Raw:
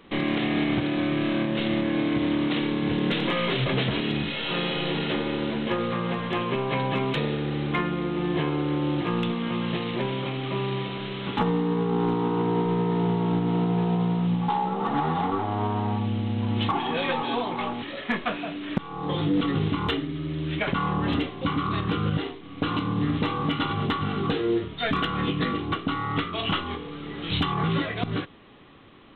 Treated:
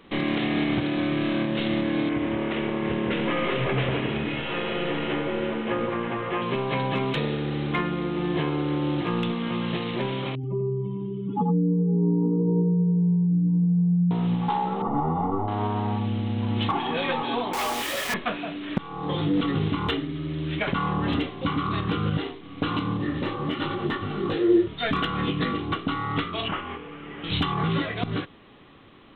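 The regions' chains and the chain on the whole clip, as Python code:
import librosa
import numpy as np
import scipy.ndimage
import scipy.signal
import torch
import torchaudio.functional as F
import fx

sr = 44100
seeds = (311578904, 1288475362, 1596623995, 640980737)

y = fx.chain(x, sr, fx.lowpass(hz=2800.0, slope=24),
    fx.peak_eq(hz=180.0, db=-6.5, octaves=0.73),
    fx.echo_alternate(ms=168, hz=1100.0, feedback_pct=55, wet_db=-3), at=(2.09, 6.42))
y = fx.chain(y, sr, fx.spec_expand(power=3.0),
    fx.echo_single(ms=86, db=-5.5), at=(10.35, 14.11))
y = fx.chain(y, sr, fx.savgol(points=65),
    fx.low_shelf(hz=65.0, db=11.5), at=(14.82, 15.48))
y = fx.chain(y, sr, fx.highpass(hz=470.0, slope=12),
    fx.quant_companded(bits=2), at=(17.53, 18.14))
y = fx.chain(y, sr, fx.small_body(hz=(360.0, 550.0, 1800.0), ring_ms=100, db=13),
    fx.detune_double(cents=50), at=(22.97, 24.67))
y = fx.chain(y, sr, fx.cvsd(bps=16000),
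    fx.low_shelf(hz=350.0, db=-6.0), at=(26.48, 27.24))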